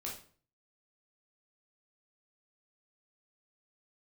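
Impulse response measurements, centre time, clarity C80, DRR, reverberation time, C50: 30 ms, 11.5 dB, −4.0 dB, 0.45 s, 6.0 dB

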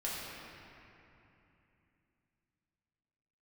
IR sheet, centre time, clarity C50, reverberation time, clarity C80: 174 ms, −2.5 dB, 2.9 s, −1.0 dB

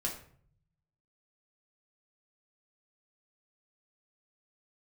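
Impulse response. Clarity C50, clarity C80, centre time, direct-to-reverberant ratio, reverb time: 8.0 dB, 12.0 dB, 22 ms, −2.0 dB, 0.55 s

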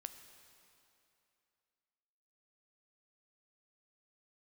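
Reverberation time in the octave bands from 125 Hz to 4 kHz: 2.5, 2.7, 2.8, 2.8, 2.6, 2.5 seconds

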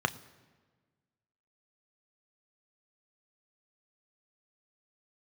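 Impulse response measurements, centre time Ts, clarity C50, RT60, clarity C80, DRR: 5 ms, 19.0 dB, non-exponential decay, 20.0 dB, 10.0 dB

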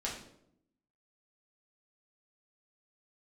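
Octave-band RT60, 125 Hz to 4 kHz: 0.95, 1.0, 0.85, 0.65, 0.55, 0.50 seconds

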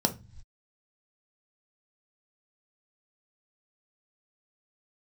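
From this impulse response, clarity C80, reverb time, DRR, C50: 24.0 dB, non-exponential decay, 5.0 dB, 16.0 dB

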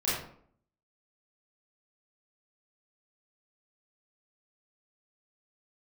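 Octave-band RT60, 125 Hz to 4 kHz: 0.70, 0.75, 0.65, 0.55, 0.45, 0.35 seconds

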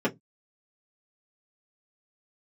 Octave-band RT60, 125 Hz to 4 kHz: 0.30, 0.25, 0.20, 0.10, 0.10, 0.10 seconds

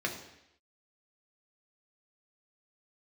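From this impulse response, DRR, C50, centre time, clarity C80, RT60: 0.5 dB, 8.0 dB, 24 ms, 10.5 dB, 0.80 s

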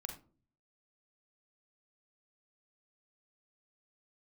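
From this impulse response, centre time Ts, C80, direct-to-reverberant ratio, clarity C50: 20 ms, 13.5 dB, 3.5 dB, 8.0 dB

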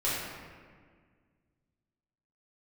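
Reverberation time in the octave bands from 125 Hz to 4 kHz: 2.5, 2.3, 1.9, 1.6, 1.6, 1.1 seconds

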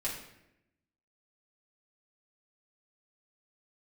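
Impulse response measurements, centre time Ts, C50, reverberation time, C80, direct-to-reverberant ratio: 36 ms, 5.0 dB, 0.85 s, 8.0 dB, −7.5 dB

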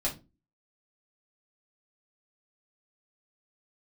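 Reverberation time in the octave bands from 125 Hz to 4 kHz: 0.40, 0.45, 0.30, 0.25, 0.20, 0.20 seconds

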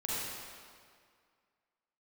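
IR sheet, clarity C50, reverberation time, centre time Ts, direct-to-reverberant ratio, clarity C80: −5.5 dB, 2.1 s, 153 ms, −7.5 dB, −2.5 dB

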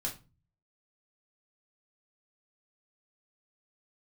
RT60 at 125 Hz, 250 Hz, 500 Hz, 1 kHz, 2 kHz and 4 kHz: 0.75, 0.50, 0.35, 0.30, 0.25, 0.25 seconds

